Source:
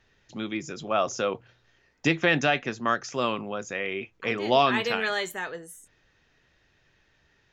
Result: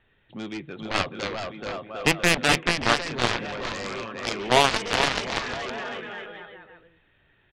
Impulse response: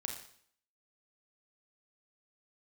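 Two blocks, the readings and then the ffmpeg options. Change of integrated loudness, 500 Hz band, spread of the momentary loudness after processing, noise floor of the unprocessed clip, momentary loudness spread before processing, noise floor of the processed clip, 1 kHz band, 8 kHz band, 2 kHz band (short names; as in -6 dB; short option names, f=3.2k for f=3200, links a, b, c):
+2.0 dB, -0.5 dB, 16 LU, -67 dBFS, 14 LU, -64 dBFS, +1.5 dB, +8.0 dB, +3.0 dB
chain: -af "aresample=8000,aresample=44100,aecho=1:1:430|752.5|994.4|1176|1312:0.631|0.398|0.251|0.158|0.1,aeval=exprs='0.422*(cos(1*acos(clip(val(0)/0.422,-1,1)))-cos(1*PI/2))+0.106*(cos(7*acos(clip(val(0)/0.422,-1,1)))-cos(7*PI/2))':c=same,volume=2.5dB"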